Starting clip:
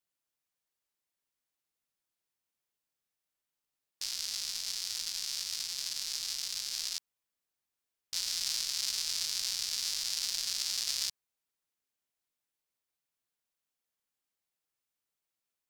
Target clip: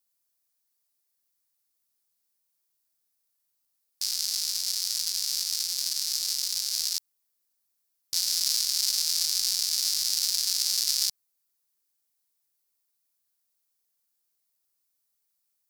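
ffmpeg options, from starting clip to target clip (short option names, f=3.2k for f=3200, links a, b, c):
-af "aexciter=amount=3.4:drive=2.4:freq=4.2k"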